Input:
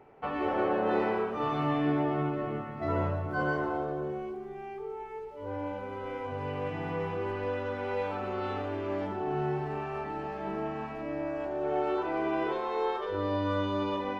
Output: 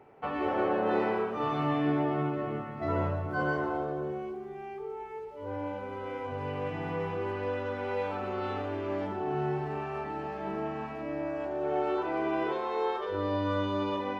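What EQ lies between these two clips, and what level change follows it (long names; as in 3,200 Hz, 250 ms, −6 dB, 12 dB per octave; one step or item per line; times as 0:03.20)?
high-pass filter 46 Hz
0.0 dB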